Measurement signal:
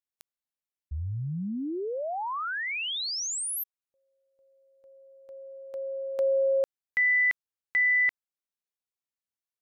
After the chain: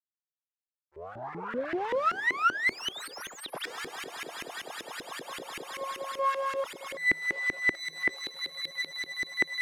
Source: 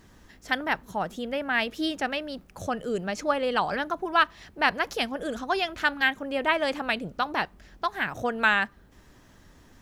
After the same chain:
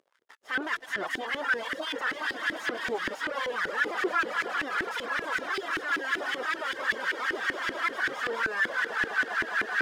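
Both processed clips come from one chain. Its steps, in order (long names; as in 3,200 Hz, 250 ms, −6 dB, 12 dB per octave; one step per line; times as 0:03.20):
lower of the sound and its delayed copy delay 0.6 ms
first-order pre-emphasis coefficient 0.9
echo that builds up and dies away 103 ms, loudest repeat 8, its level −15 dB
fuzz pedal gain 59 dB, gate −58 dBFS
reverb reduction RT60 0.83 s
volume swells 148 ms
brickwall limiter −12.5 dBFS
flanger 0.58 Hz, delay 1.7 ms, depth 1.4 ms, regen +56%
low-shelf EQ 150 Hz −10 dB
bad sample-rate conversion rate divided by 2×, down none, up hold
auto-filter band-pass saw up 5.2 Hz 330–2,000 Hz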